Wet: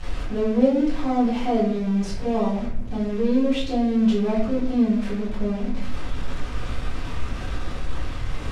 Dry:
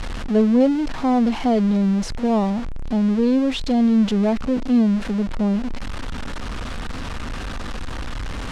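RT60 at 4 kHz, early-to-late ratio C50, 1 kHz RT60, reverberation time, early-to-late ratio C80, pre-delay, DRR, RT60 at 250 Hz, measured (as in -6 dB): 0.45 s, 4.5 dB, 0.55 s, 0.60 s, 7.5 dB, 5 ms, -9.5 dB, 1.0 s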